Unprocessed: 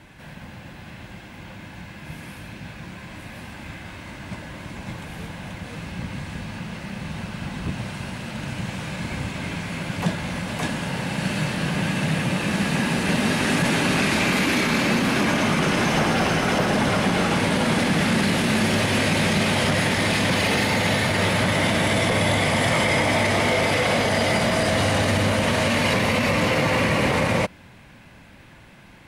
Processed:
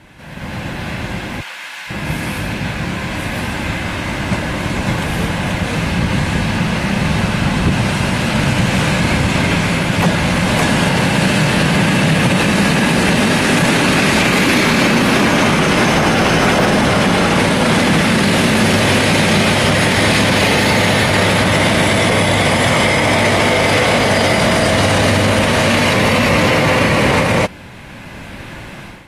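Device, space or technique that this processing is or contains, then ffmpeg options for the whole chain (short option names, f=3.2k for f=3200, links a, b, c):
low-bitrate web radio: -filter_complex "[0:a]asplit=3[a][b][c];[a]afade=t=out:st=1.4:d=0.02[d];[b]highpass=1.3k,afade=t=in:st=1.4:d=0.02,afade=t=out:st=1.89:d=0.02[e];[c]afade=t=in:st=1.89:d=0.02[f];[d][e][f]amix=inputs=3:normalize=0,dynaudnorm=f=280:g=3:m=12.5dB,alimiter=limit=-8.5dB:level=0:latency=1:release=39,volume=3.5dB" -ar 32000 -c:a aac -b:a 48k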